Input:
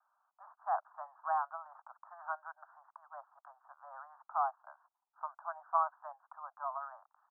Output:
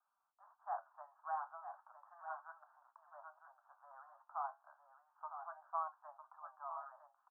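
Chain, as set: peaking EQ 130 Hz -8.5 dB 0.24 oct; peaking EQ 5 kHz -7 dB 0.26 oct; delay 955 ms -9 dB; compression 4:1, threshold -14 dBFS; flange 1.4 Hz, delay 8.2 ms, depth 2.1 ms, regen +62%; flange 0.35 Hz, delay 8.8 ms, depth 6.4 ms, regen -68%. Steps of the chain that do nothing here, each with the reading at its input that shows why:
peaking EQ 130 Hz: input has nothing below 540 Hz; peaking EQ 5 kHz: input has nothing above 1.7 kHz; compression, threshold -14 dBFS: peak at its input -18.5 dBFS

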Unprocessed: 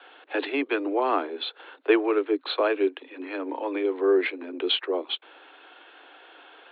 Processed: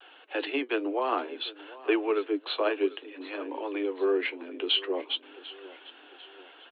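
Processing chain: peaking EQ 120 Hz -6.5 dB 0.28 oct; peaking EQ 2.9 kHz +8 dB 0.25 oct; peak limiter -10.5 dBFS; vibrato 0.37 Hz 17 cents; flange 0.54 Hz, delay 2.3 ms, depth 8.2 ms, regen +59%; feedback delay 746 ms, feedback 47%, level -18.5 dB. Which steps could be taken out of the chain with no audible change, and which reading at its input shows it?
peaking EQ 120 Hz: input has nothing below 250 Hz

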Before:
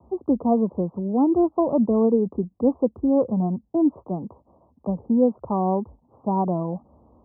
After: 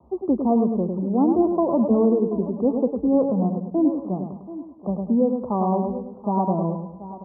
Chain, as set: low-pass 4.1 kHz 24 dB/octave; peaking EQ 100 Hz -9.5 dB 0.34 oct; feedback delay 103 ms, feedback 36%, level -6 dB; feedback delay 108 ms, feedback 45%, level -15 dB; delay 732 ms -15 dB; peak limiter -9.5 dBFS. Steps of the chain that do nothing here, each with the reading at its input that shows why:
low-pass 4.1 kHz: input has nothing above 1.1 kHz

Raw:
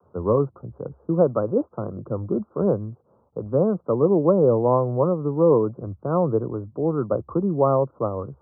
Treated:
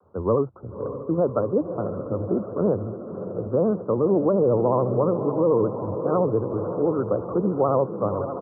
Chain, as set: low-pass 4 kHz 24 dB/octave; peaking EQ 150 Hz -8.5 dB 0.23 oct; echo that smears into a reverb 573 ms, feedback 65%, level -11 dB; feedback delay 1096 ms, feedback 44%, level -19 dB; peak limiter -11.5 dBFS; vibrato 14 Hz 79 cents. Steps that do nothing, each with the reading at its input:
low-pass 4 kHz: input has nothing above 1.4 kHz

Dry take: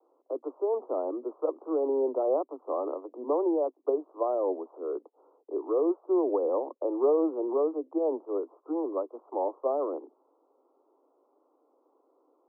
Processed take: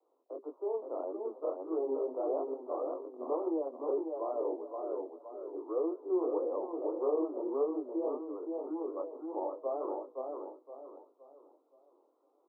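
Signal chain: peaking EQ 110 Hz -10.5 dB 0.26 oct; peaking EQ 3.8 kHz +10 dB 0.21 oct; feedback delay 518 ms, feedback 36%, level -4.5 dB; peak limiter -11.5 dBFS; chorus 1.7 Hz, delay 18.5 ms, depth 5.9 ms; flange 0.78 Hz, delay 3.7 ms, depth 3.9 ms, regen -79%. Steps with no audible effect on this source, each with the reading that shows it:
peaking EQ 110 Hz: input has nothing below 230 Hz; peaking EQ 3.8 kHz: input has nothing above 1.3 kHz; peak limiter -11.5 dBFS: peak at its input -13.0 dBFS

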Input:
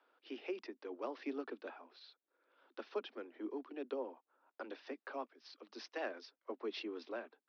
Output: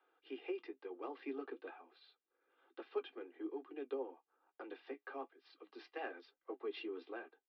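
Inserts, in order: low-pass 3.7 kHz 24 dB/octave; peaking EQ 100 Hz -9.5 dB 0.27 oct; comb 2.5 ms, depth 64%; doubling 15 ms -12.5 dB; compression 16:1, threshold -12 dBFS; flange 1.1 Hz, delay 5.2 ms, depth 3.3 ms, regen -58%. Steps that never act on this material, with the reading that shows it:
peaking EQ 100 Hz: input has nothing below 200 Hz; compression, threshold -12 dBFS: peak at its input -24.5 dBFS

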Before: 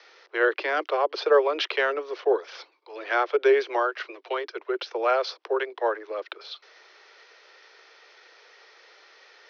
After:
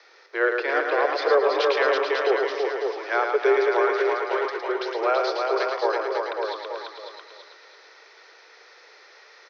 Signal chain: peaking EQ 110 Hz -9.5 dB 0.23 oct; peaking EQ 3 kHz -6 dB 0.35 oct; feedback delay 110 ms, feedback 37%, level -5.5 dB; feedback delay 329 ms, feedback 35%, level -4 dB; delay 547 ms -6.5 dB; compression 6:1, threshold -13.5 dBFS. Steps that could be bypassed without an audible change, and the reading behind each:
peaking EQ 110 Hz: input has nothing below 300 Hz

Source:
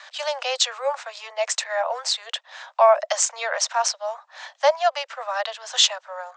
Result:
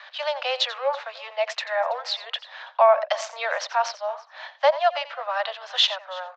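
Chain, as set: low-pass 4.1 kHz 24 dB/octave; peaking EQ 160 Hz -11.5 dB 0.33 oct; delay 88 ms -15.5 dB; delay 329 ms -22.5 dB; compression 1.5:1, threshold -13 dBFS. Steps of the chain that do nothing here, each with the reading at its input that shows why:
peaking EQ 160 Hz: input has nothing below 430 Hz

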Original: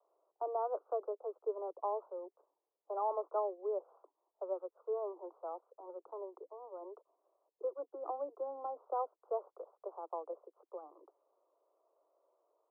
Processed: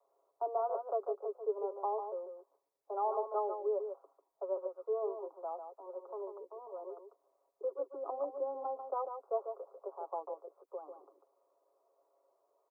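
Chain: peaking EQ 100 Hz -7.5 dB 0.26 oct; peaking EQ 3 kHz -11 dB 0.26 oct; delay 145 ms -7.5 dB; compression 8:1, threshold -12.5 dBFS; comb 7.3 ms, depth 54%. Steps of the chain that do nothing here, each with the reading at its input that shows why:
peaking EQ 100 Hz: input has nothing below 250 Hz; peaking EQ 3 kHz: input has nothing above 1.4 kHz; compression, threshold -12.5 dBFS: peak at its input -24.0 dBFS

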